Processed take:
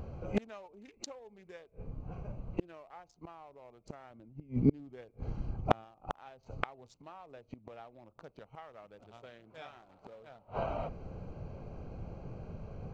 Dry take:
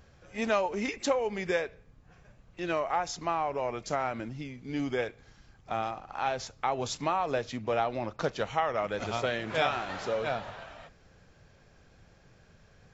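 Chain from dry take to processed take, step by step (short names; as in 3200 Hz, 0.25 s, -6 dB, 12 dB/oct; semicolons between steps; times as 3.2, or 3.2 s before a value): Wiener smoothing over 25 samples; flipped gate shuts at -33 dBFS, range -36 dB; 4.1–5.85 low shelf 440 Hz +5.5 dB; gain +15 dB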